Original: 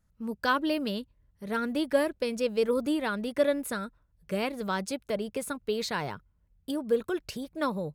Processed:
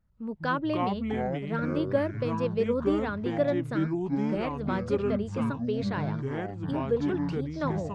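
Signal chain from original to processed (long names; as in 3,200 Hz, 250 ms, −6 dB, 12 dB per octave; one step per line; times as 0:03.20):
delay with pitch and tempo change per echo 116 ms, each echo −6 semitones, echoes 3
head-to-tape spacing loss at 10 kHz 24 dB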